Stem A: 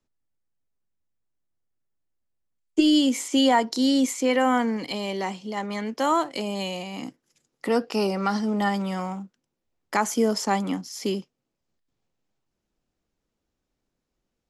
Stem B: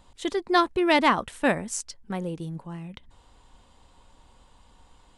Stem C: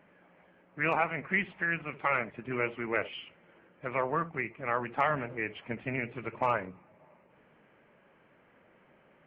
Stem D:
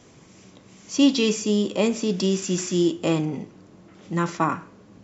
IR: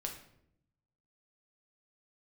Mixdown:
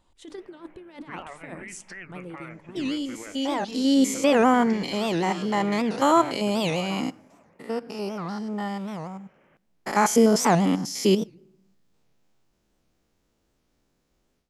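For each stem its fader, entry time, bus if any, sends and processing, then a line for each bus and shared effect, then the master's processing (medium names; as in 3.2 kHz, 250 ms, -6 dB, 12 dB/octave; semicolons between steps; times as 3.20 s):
3.29 s -20.5 dB -> 4.04 s -7.5 dB -> 7.06 s -7.5 dB -> 7.50 s -19 dB -> 9.28 s -19 dB -> 9.81 s -6.5 dB, 0.00 s, send -16 dB, spectrogram pixelated in time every 100 ms; level rider gain up to 16 dB
-15.5 dB, 0.00 s, send -13.5 dB, peaking EQ 320 Hz +8 dB 0.24 oct; hum notches 50/100/150/200/250/300 Hz; compressor with a negative ratio -24 dBFS, ratio -0.5
+0.5 dB, 0.30 s, send -14 dB, compression 5:1, threshold -39 dBFS, peak gain reduction 14.5 dB; peak limiter -32.5 dBFS, peak gain reduction 7 dB; attacks held to a fixed rise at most 460 dB/s
-18.5 dB, 2.50 s, no send, none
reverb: on, RT60 0.75 s, pre-delay 6 ms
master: warped record 78 rpm, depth 250 cents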